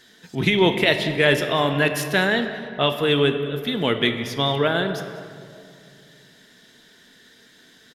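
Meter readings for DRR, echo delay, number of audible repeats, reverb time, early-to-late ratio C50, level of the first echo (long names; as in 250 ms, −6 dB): 6.5 dB, 196 ms, 1, 2.5 s, 8.0 dB, −18.0 dB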